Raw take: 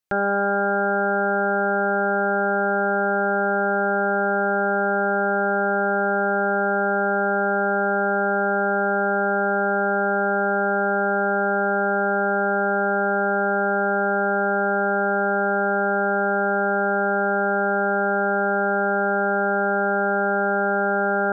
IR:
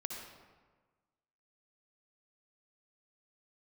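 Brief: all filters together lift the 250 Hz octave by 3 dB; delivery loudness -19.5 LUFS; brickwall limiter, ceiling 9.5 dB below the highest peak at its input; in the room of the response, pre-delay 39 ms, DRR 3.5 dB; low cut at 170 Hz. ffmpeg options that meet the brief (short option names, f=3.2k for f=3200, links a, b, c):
-filter_complex "[0:a]highpass=170,equalizer=f=250:t=o:g=7,alimiter=limit=-20dB:level=0:latency=1,asplit=2[a][b];[1:a]atrim=start_sample=2205,adelay=39[c];[b][c]afir=irnorm=-1:irlink=0,volume=-3.5dB[d];[a][d]amix=inputs=2:normalize=0,volume=11.5dB"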